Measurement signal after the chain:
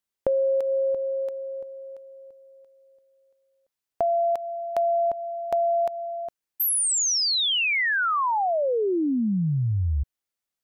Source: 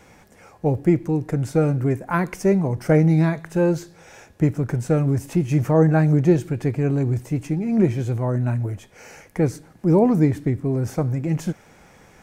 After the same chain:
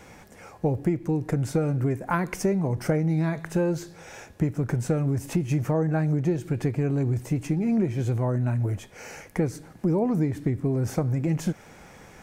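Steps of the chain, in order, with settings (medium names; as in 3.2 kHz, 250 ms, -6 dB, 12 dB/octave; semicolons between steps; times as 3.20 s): compression 6:1, threshold -23 dBFS; trim +2 dB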